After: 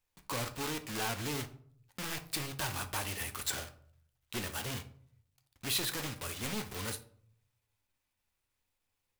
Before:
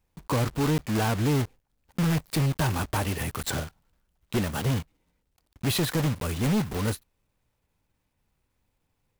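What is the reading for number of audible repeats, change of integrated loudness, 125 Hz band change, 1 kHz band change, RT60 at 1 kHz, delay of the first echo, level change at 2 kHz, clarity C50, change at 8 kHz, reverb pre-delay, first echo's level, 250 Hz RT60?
none, -9.5 dB, -17.0 dB, -8.5 dB, 0.50 s, none, -5.0 dB, 13.5 dB, -2.5 dB, 6 ms, none, 0.75 s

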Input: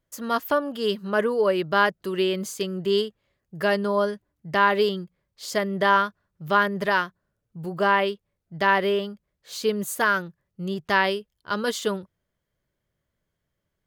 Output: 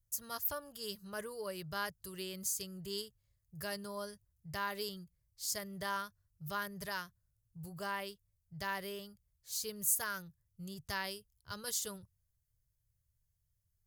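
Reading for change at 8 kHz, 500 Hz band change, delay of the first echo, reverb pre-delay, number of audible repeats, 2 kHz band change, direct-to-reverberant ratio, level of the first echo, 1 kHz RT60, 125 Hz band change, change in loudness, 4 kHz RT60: +0.5 dB, -21.5 dB, none, none, none, -18.0 dB, none, none, none, -14.5 dB, -15.5 dB, none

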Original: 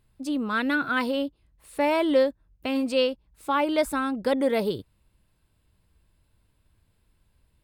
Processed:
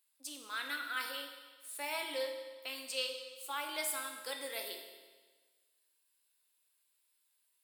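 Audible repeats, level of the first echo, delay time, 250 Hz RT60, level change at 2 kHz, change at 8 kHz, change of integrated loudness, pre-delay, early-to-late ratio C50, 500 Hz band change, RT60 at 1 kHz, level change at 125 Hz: none, none, none, 1.4 s, -10.0 dB, +3.5 dB, -13.5 dB, 6 ms, 5.0 dB, -18.5 dB, 1.4 s, under -40 dB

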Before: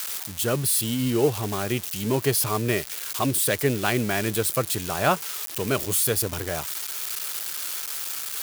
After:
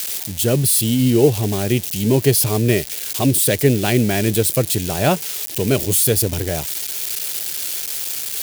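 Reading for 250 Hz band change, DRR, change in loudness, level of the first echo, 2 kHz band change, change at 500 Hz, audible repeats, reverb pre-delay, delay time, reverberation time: +9.0 dB, none, +7.0 dB, none, +2.0 dB, +7.0 dB, none, none, none, none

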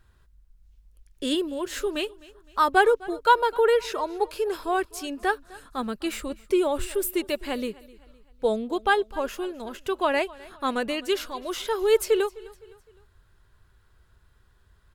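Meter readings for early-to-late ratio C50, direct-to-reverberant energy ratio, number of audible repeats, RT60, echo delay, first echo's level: none, none, 2, none, 0.256 s, -21.5 dB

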